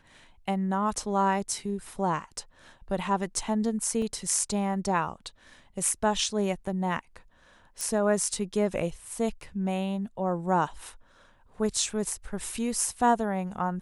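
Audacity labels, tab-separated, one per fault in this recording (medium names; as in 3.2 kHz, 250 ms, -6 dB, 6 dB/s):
4.020000	4.020000	dropout 2.7 ms
7.810000	7.810000	pop -18 dBFS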